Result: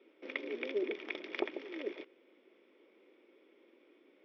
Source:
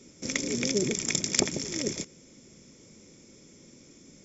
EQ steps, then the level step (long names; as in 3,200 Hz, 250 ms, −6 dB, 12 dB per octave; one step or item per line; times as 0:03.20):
elliptic band-pass filter 340–3,100 Hz, stop band 40 dB
high-frequency loss of the air 97 metres
−4.5 dB